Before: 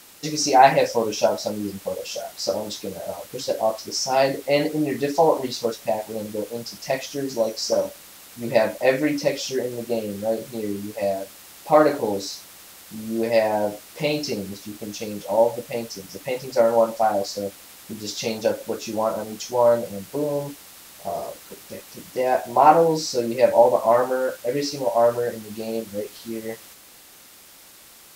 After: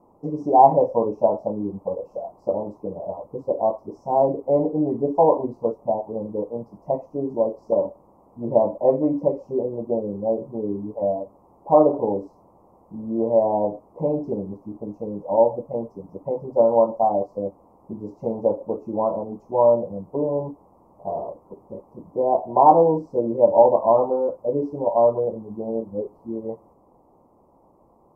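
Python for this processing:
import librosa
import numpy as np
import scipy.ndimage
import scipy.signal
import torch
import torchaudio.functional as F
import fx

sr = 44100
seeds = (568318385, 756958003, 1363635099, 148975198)

y = scipy.signal.sosfilt(scipy.signal.ellip(4, 1.0, 40, 1000.0, 'lowpass', fs=sr, output='sos'), x)
y = y * 10.0 ** (1.5 / 20.0)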